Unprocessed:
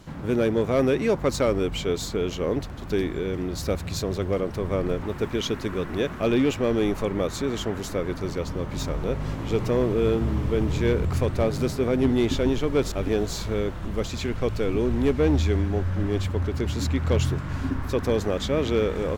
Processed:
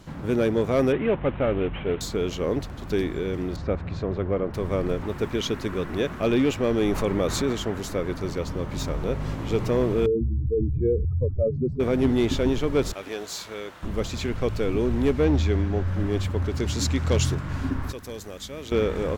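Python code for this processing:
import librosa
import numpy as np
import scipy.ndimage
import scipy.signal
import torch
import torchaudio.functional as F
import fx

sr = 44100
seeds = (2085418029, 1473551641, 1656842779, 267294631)

y = fx.cvsd(x, sr, bps=16000, at=(0.92, 2.01))
y = fx.lowpass(y, sr, hz=2000.0, slope=12, at=(3.56, 4.54))
y = fx.env_flatten(y, sr, amount_pct=50, at=(6.81, 7.53))
y = fx.spec_expand(y, sr, power=2.7, at=(10.06, 11.8))
y = fx.highpass(y, sr, hz=1100.0, slope=6, at=(12.93, 13.83))
y = fx.peak_eq(y, sr, hz=11000.0, db=-9.0, octaves=0.84, at=(15.24, 15.88))
y = fx.dynamic_eq(y, sr, hz=6300.0, q=0.76, threshold_db=-50.0, ratio=4.0, max_db=8, at=(16.39, 17.35))
y = fx.pre_emphasis(y, sr, coefficient=0.8, at=(17.92, 18.72))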